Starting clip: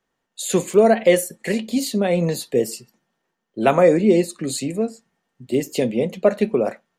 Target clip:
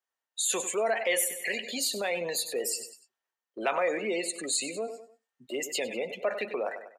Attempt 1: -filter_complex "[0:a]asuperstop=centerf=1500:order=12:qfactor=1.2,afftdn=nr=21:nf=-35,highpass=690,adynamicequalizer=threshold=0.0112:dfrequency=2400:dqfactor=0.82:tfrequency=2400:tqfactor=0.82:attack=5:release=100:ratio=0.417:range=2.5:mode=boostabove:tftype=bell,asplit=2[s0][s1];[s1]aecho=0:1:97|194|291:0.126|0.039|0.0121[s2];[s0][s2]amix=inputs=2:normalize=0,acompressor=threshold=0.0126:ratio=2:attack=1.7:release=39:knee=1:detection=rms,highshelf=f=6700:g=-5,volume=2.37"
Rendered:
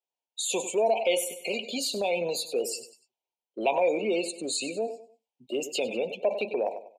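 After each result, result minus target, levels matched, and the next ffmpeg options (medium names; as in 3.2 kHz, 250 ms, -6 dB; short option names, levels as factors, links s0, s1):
8 kHz band -4.5 dB; compression: peak gain reduction -4.5 dB; 2 kHz band -4.5 dB
-filter_complex "[0:a]asuperstop=centerf=1500:order=12:qfactor=1.2,afftdn=nr=21:nf=-35,highpass=690,adynamicequalizer=threshold=0.0112:dfrequency=2400:dqfactor=0.82:tfrequency=2400:tqfactor=0.82:attack=5:release=100:ratio=0.417:range=2.5:mode=boostabove:tftype=bell,asplit=2[s0][s1];[s1]aecho=0:1:97|194|291:0.126|0.039|0.0121[s2];[s0][s2]amix=inputs=2:normalize=0,acompressor=threshold=0.0126:ratio=2:attack=1.7:release=39:knee=1:detection=rms,highshelf=f=6700:g=7,volume=2.37"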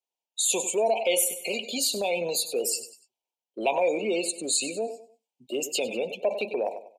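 2 kHz band -5.0 dB; compression: peak gain reduction -4.5 dB
-filter_complex "[0:a]afftdn=nr=21:nf=-35,highpass=690,adynamicequalizer=threshold=0.0112:dfrequency=2400:dqfactor=0.82:tfrequency=2400:tqfactor=0.82:attack=5:release=100:ratio=0.417:range=2.5:mode=boostabove:tftype=bell,asplit=2[s0][s1];[s1]aecho=0:1:97|194|291:0.126|0.039|0.0121[s2];[s0][s2]amix=inputs=2:normalize=0,acompressor=threshold=0.0126:ratio=2:attack=1.7:release=39:knee=1:detection=rms,highshelf=f=6700:g=7,volume=2.37"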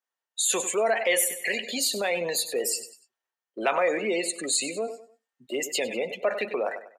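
compression: peak gain reduction -4 dB
-filter_complex "[0:a]afftdn=nr=21:nf=-35,highpass=690,adynamicequalizer=threshold=0.0112:dfrequency=2400:dqfactor=0.82:tfrequency=2400:tqfactor=0.82:attack=5:release=100:ratio=0.417:range=2.5:mode=boostabove:tftype=bell,asplit=2[s0][s1];[s1]aecho=0:1:97|194|291:0.126|0.039|0.0121[s2];[s0][s2]amix=inputs=2:normalize=0,acompressor=threshold=0.00531:ratio=2:attack=1.7:release=39:knee=1:detection=rms,highshelf=f=6700:g=7,volume=2.37"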